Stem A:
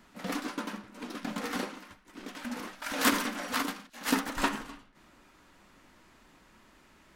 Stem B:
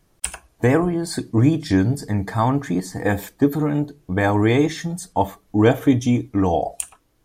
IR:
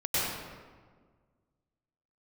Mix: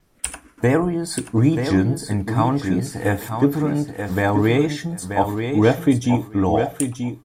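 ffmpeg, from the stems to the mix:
-filter_complex "[0:a]asplit=2[a][b];[b]afreqshift=-0.36[c];[a][c]amix=inputs=2:normalize=1,volume=-13dB,asplit=2[d][e];[e]volume=-6dB[f];[1:a]volume=-0.5dB,asplit=2[g][h];[h]volume=-7dB[i];[f][i]amix=inputs=2:normalize=0,aecho=0:1:933|1866|2799:1|0.15|0.0225[j];[d][g][j]amix=inputs=3:normalize=0,bandreject=f=6.5k:w=20,adynamicequalizer=threshold=0.00316:dfrequency=10000:dqfactor=4.1:tfrequency=10000:tqfactor=4.1:attack=5:release=100:ratio=0.375:range=3:mode=boostabove:tftype=bell"

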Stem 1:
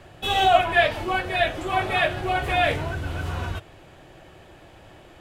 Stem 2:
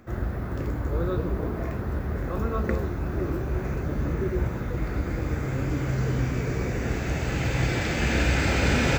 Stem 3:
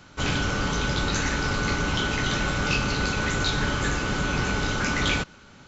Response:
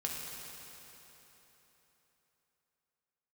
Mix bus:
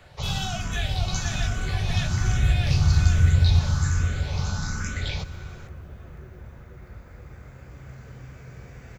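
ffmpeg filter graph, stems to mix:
-filter_complex "[0:a]asubboost=boost=10.5:cutoff=250,volume=-4.5dB,asplit=2[a][b];[b]volume=-5.5dB[c];[1:a]adelay=2000,volume=-16.5dB,asplit=2[d][e];[e]volume=-4dB[f];[2:a]equalizer=f=2.9k:t=o:w=0.57:g=-9,asplit=2[g][h];[h]afreqshift=1.2[i];[g][i]amix=inputs=2:normalize=1,volume=0dB,asplit=2[j][k];[k]volume=-15dB[l];[3:a]atrim=start_sample=2205[m];[l][m]afir=irnorm=-1:irlink=0[n];[c][f]amix=inputs=2:normalize=0,aecho=0:1:486|972|1458|1944|2430|2916|3402|3888:1|0.52|0.27|0.141|0.0731|0.038|0.0198|0.0103[o];[a][d][j][n][o]amix=inputs=5:normalize=0,equalizer=f=310:w=1.9:g=-11.5,acrossover=split=250|3000[p][q][r];[q]acompressor=threshold=-39dB:ratio=3[s];[p][s][r]amix=inputs=3:normalize=0"

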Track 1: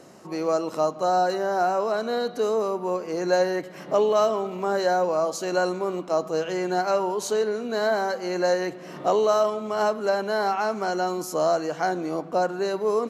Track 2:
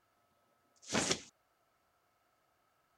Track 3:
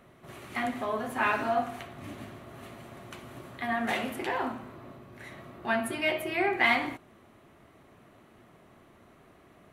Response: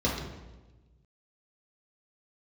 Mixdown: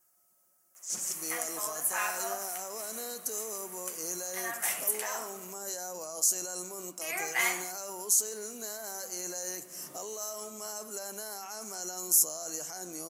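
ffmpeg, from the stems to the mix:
-filter_complex "[0:a]highshelf=f=2.3k:g=11,alimiter=limit=-19dB:level=0:latency=1:release=21,adelay=900,volume=-15.5dB[a];[1:a]aecho=1:1:5.5:0.98,acompressor=threshold=-38dB:ratio=10,volume=-9dB[b];[2:a]highpass=930,adelay=750,volume=-4.5dB,asplit=3[c][d][e];[c]atrim=end=5.54,asetpts=PTS-STARTPTS,afade=t=out:st=5.536:d=0.004:c=hsin[f];[d]atrim=start=5.54:end=7.01,asetpts=PTS-STARTPTS,volume=0[g];[e]atrim=start=7.01,asetpts=PTS-STARTPTS,afade=t=in:d=0.004:c=hsin[h];[f][g][h]concat=n=3:v=0:a=1[i];[a][b][i]amix=inputs=3:normalize=0,aexciter=amount=15.6:drive=3.9:freq=5.7k"

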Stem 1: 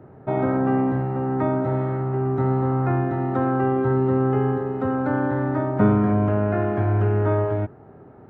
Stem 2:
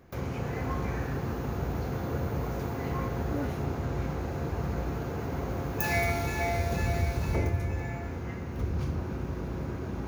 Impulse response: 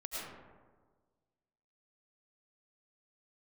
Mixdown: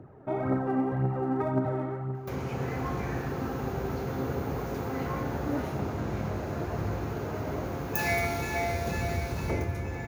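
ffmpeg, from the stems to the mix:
-filter_complex "[0:a]alimiter=limit=-16.5dB:level=0:latency=1:release=20,aphaser=in_gain=1:out_gain=1:delay=3.8:decay=0.52:speed=1.9:type=triangular,volume=-6dB,afade=t=out:st=1.68:d=0.53:silence=0.334965[a];[1:a]lowshelf=f=82:g=-9,adelay=2150,volume=0.5dB[b];[a][b]amix=inputs=2:normalize=0"

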